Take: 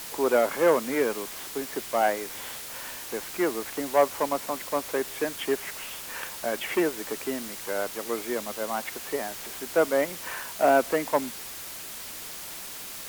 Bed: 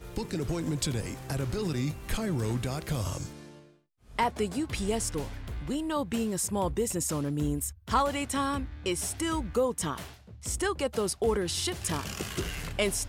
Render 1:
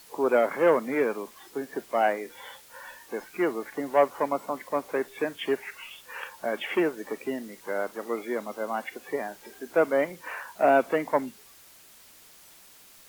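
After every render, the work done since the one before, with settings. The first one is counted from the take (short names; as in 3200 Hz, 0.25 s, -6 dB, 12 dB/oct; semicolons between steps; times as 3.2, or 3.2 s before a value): noise print and reduce 14 dB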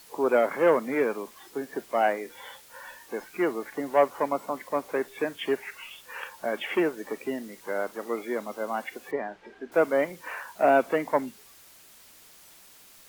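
9.11–9.72 LPF 2600 Hz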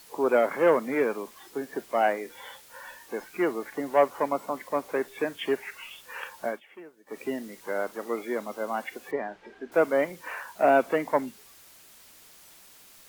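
6.47–7.2 dip -21.5 dB, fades 0.14 s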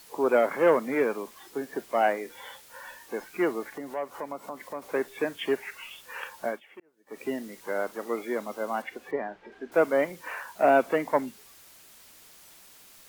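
3.63–4.82 compressor 2:1, threshold -38 dBFS; 6.8–7.26 fade in; 8.82–9.52 high shelf 4900 Hz -9 dB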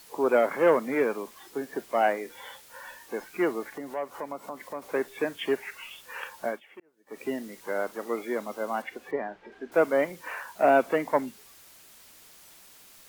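nothing audible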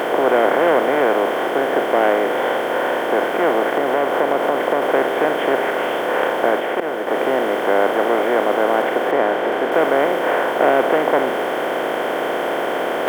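per-bin compression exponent 0.2; reverse; upward compressor, threshold -18 dBFS; reverse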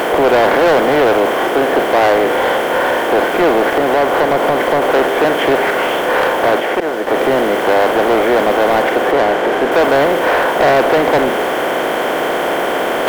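per-bin expansion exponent 1.5; sample leveller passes 3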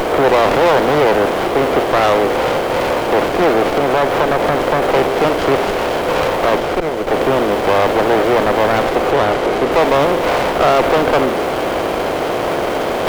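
running maximum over 17 samples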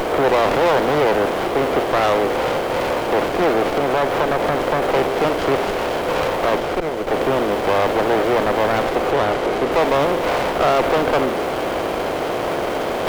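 gain -4 dB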